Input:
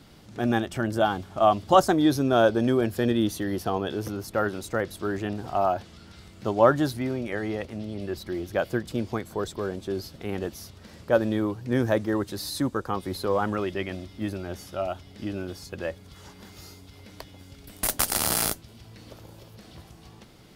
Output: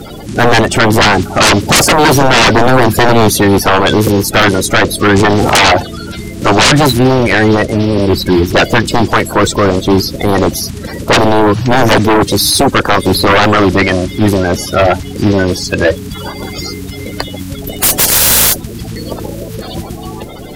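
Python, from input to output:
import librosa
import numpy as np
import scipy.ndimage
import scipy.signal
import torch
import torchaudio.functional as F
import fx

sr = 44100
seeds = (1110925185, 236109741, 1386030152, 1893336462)

y = fx.spec_quant(x, sr, step_db=30)
y = fx.transient(y, sr, attack_db=11, sustain_db=7, at=(5.14, 5.7), fade=0.02)
y = fx.fold_sine(y, sr, drive_db=20, ceiling_db=-5.0)
y = F.gain(torch.from_numpy(y), 1.5).numpy()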